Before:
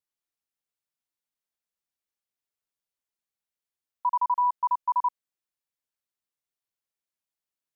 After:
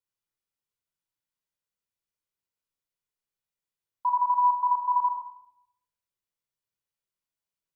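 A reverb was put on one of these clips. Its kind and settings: simulated room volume 2400 m³, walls furnished, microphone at 4.8 m; trim -5.5 dB

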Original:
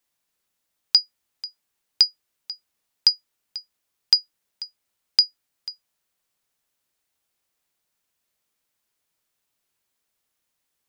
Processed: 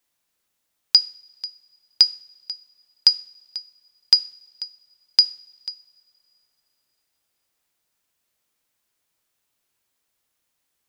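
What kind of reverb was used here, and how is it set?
two-slope reverb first 0.5 s, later 3.2 s, from -22 dB, DRR 14.5 dB; trim +2 dB

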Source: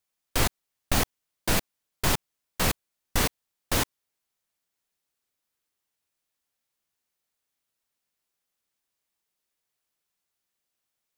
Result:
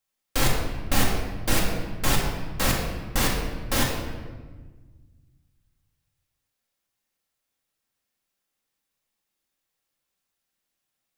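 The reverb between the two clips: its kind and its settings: simulated room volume 1300 m³, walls mixed, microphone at 2.2 m; trim -1.5 dB

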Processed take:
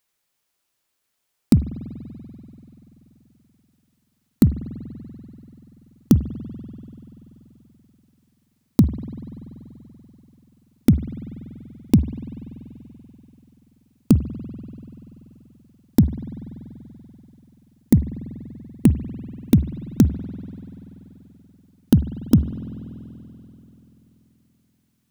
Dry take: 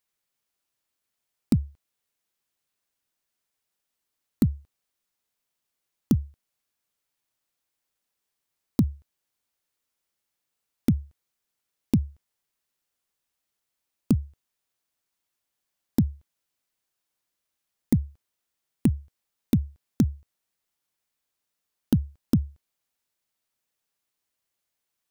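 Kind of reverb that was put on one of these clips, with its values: spring tank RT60 3.7 s, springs 48 ms, chirp 35 ms, DRR 11.5 dB; trim +7 dB

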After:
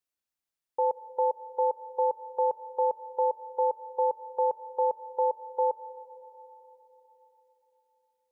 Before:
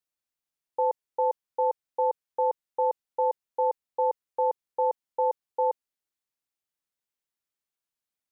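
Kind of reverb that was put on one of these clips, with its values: algorithmic reverb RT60 4.1 s, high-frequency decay 0.8×, pre-delay 35 ms, DRR 14.5 dB; trim -1 dB

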